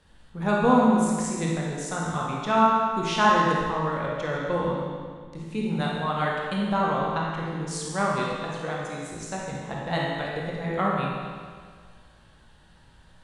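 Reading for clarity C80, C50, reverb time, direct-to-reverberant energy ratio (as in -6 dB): 0.5 dB, -2.0 dB, 1.8 s, -4.5 dB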